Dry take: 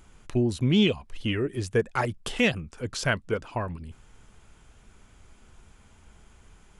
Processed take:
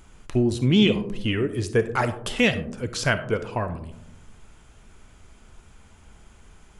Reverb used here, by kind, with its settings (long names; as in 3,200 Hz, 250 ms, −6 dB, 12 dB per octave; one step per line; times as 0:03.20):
comb and all-pass reverb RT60 0.83 s, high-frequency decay 0.25×, pre-delay 10 ms, DRR 10.5 dB
level +3 dB